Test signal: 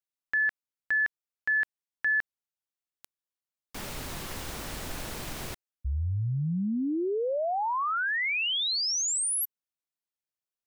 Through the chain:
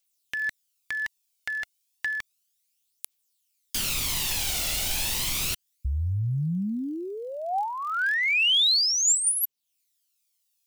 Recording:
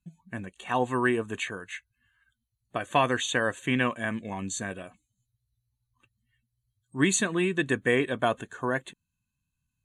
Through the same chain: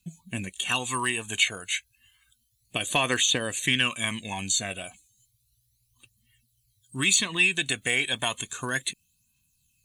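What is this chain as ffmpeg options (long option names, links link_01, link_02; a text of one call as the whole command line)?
ffmpeg -i in.wav -filter_complex "[0:a]acrossover=split=1200|3900[link_01][link_02][link_03];[link_01]acompressor=threshold=-31dB:ratio=4[link_04];[link_02]acompressor=threshold=-30dB:ratio=4[link_05];[link_03]acompressor=threshold=-48dB:ratio=4[link_06];[link_04][link_05][link_06]amix=inputs=3:normalize=0,aphaser=in_gain=1:out_gain=1:delay=1.5:decay=0.5:speed=0.32:type=triangular,aexciter=amount=3.5:drive=8.5:freq=2300" out.wav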